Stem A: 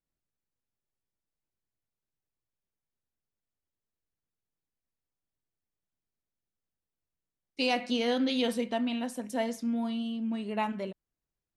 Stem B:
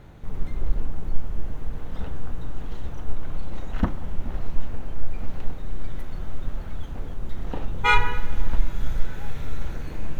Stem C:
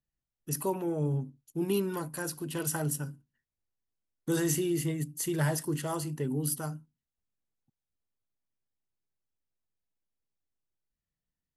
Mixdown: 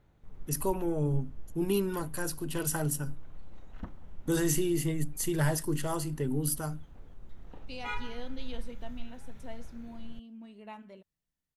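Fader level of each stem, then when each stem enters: −15.0, −18.5, +0.5 decibels; 0.10, 0.00, 0.00 seconds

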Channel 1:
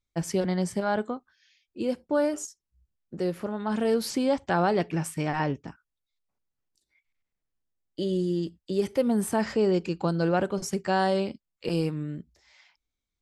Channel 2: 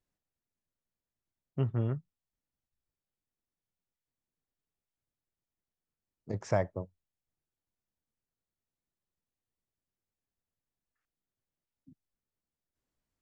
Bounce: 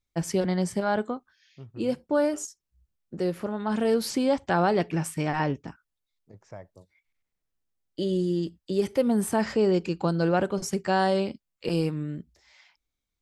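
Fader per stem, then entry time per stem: +1.0, −14.5 decibels; 0.00, 0.00 seconds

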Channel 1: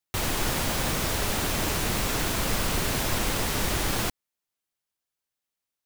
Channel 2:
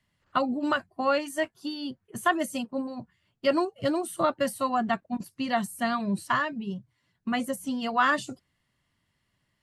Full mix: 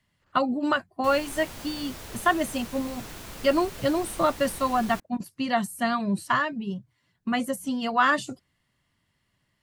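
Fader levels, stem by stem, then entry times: −14.0, +2.0 decibels; 0.90, 0.00 seconds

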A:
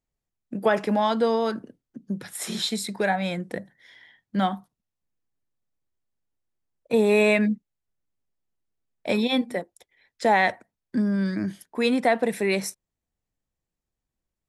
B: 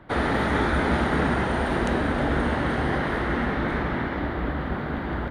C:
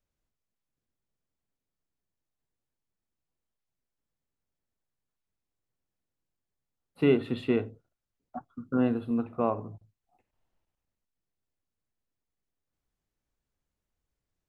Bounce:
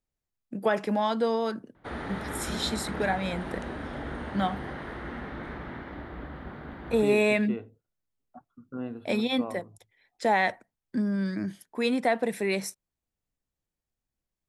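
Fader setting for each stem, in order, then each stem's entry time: −4.0, −12.5, −10.0 decibels; 0.00, 1.75, 0.00 seconds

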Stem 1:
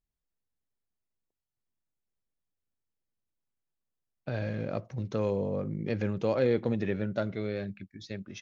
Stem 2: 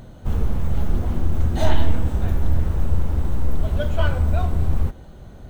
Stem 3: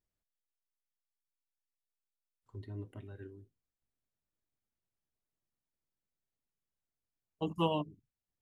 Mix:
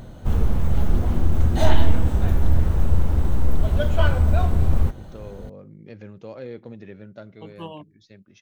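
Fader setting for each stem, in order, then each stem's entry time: −10.0, +1.5, −5.5 decibels; 0.00, 0.00, 0.00 seconds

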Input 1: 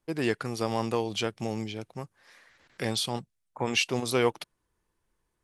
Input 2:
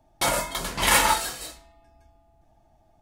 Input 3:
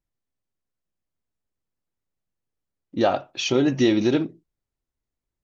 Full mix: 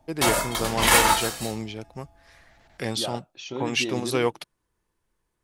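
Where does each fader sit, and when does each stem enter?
+1.0, +1.5, −13.0 decibels; 0.00, 0.00, 0.00 seconds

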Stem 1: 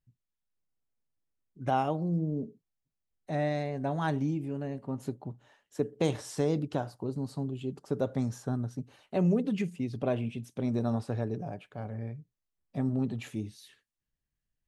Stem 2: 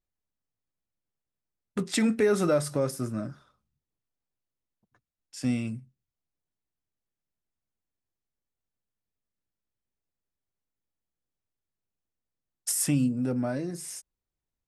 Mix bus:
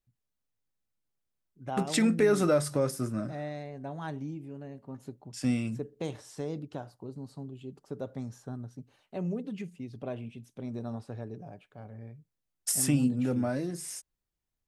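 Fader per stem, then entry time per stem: −7.5, −0.5 decibels; 0.00, 0.00 seconds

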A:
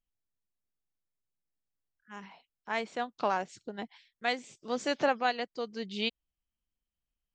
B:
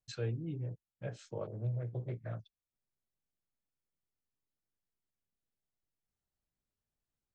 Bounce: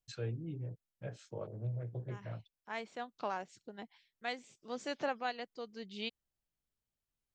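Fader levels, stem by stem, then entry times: −8.5, −2.5 decibels; 0.00, 0.00 seconds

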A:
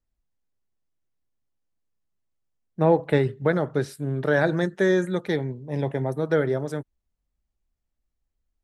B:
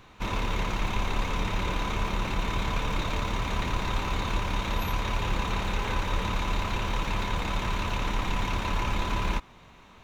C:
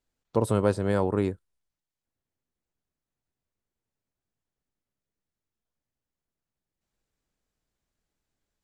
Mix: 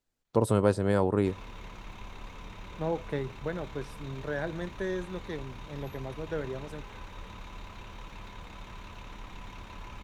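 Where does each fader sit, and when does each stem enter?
−12.5, −16.0, −0.5 decibels; 0.00, 1.05, 0.00 seconds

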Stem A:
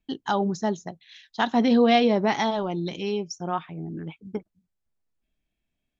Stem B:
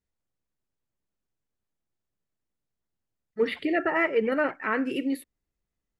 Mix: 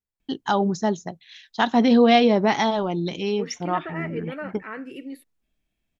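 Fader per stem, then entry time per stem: +3.0, −8.5 decibels; 0.20, 0.00 seconds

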